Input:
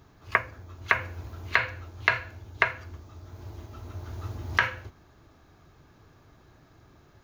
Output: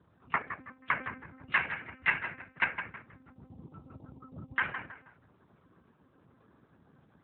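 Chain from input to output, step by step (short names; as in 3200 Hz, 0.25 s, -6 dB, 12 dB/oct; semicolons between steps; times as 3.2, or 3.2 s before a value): spectral gate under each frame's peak -25 dB strong; 1.35–3.46 high shelf 2300 Hz +7 dB; notch comb 210 Hz; tape echo 0.162 s, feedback 37%, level -7.5 dB, low-pass 2400 Hz; monotone LPC vocoder at 8 kHz 260 Hz; gain -4 dB; AMR-NB 12.2 kbps 8000 Hz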